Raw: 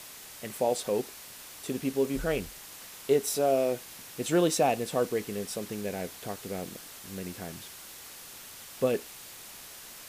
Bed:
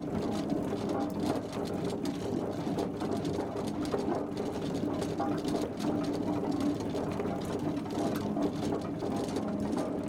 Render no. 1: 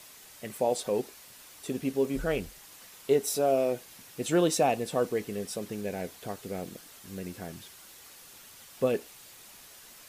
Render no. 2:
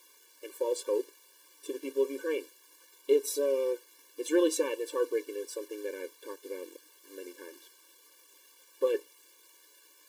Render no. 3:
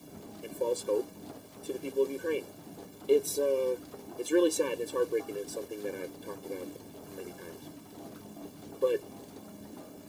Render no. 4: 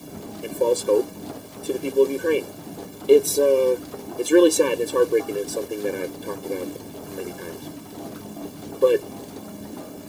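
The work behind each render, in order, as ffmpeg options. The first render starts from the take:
ffmpeg -i in.wav -af "afftdn=noise_reduction=6:noise_floor=-47" out.wav
ffmpeg -i in.wav -af "aeval=exprs='sgn(val(0))*max(abs(val(0))-0.00188,0)':channel_layout=same,afftfilt=real='re*eq(mod(floor(b*sr/1024/300),2),1)':imag='im*eq(mod(floor(b*sr/1024/300),2),1)':win_size=1024:overlap=0.75" out.wav
ffmpeg -i in.wav -i bed.wav -filter_complex "[1:a]volume=-15dB[link_01];[0:a][link_01]amix=inputs=2:normalize=0" out.wav
ffmpeg -i in.wav -af "volume=10.5dB" out.wav

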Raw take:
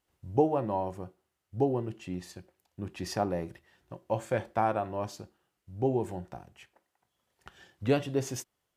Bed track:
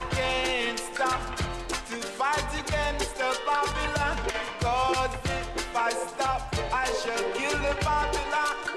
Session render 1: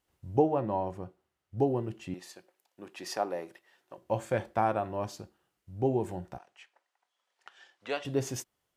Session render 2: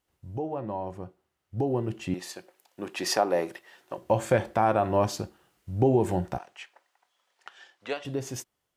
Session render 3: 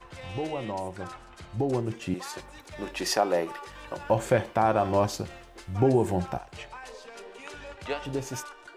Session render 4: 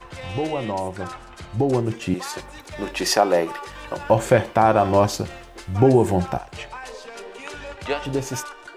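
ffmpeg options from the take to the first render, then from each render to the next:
ffmpeg -i in.wav -filter_complex "[0:a]asettb=1/sr,asplit=3[link_01][link_02][link_03];[link_01]atrim=end=0.394[link_04];[link_02]atrim=start=0.39:end=1.58,asetpts=PTS-STARTPTS,afade=type=in:duration=0.004:curve=qsin,afade=type=out:start_time=1.186:duration=0.004:curve=qsin,highshelf=frequency=6000:gain=-8.5[link_05];[link_03]atrim=start=1.576[link_06];[link_04][link_05]acrossfade=duration=0.004:curve1=hsin:curve2=qsin[link_07];[link_07][link_06]acrossfade=duration=0.004:curve1=qsin:curve2=hsin,asettb=1/sr,asplit=3[link_08][link_09][link_10];[link_08]atrim=end=2.144[link_11];[link_09]atrim=start=2.14:end=3.98,asetpts=PTS-STARTPTS,afade=type=in:duration=0.004:curve=qsin,afade=type=out:start_time=1.836:duration=0.004:curve=qsin,highpass=410[link_12];[link_10]atrim=start=3.976[link_13];[link_11][link_12]acrossfade=duration=0.004:curve1=hsin:curve2=qsin[link_14];[link_14][link_13]acrossfade=duration=0.004:curve1=qsin:curve2=hsin,asettb=1/sr,asplit=3[link_15][link_16][link_17];[link_15]atrim=end=6.384[link_18];[link_16]atrim=start=6.38:end=8.05,asetpts=PTS-STARTPTS,afade=type=in:duration=0.004:curve=qsin,afade=type=out:start_time=1.666:duration=0.004:curve=qsin,highpass=700,lowpass=6800[link_19];[link_17]atrim=start=8.046[link_20];[link_18][link_19]acrossfade=duration=0.004:curve1=hsin:curve2=qsin[link_21];[link_21][link_20]acrossfade=duration=0.004:curve1=qsin:curve2=hsin" out.wav
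ffmpeg -i in.wav -af "alimiter=limit=-22.5dB:level=0:latency=1:release=177,dynaudnorm=framelen=370:gausssize=11:maxgain=11.5dB" out.wav
ffmpeg -i in.wav -i bed.wav -filter_complex "[1:a]volume=-16dB[link_01];[0:a][link_01]amix=inputs=2:normalize=0" out.wav
ffmpeg -i in.wav -af "volume=7dB" out.wav

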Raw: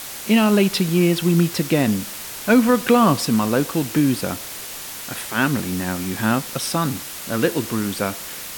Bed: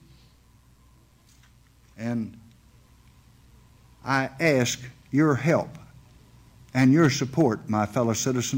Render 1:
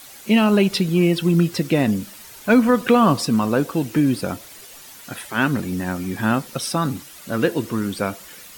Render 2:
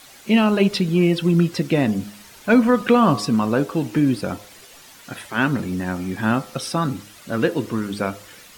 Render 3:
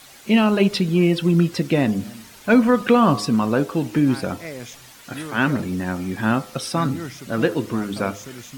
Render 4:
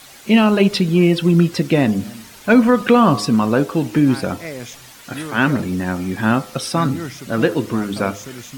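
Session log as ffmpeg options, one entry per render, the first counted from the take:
ffmpeg -i in.wav -af "afftdn=noise_reduction=11:noise_floor=-33" out.wav
ffmpeg -i in.wav -af "highshelf=frequency=9000:gain=-10,bandreject=frequency=102.9:width_type=h:width=4,bandreject=frequency=205.8:width_type=h:width=4,bandreject=frequency=308.7:width_type=h:width=4,bandreject=frequency=411.6:width_type=h:width=4,bandreject=frequency=514.5:width_type=h:width=4,bandreject=frequency=617.4:width_type=h:width=4,bandreject=frequency=720.3:width_type=h:width=4,bandreject=frequency=823.2:width_type=h:width=4,bandreject=frequency=926.1:width_type=h:width=4,bandreject=frequency=1029:width_type=h:width=4,bandreject=frequency=1131.9:width_type=h:width=4,bandreject=frequency=1234.8:width_type=h:width=4,bandreject=frequency=1337.7:width_type=h:width=4" out.wav
ffmpeg -i in.wav -i bed.wav -filter_complex "[1:a]volume=-13dB[link_01];[0:a][link_01]amix=inputs=2:normalize=0" out.wav
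ffmpeg -i in.wav -af "volume=3.5dB,alimiter=limit=-3dB:level=0:latency=1" out.wav

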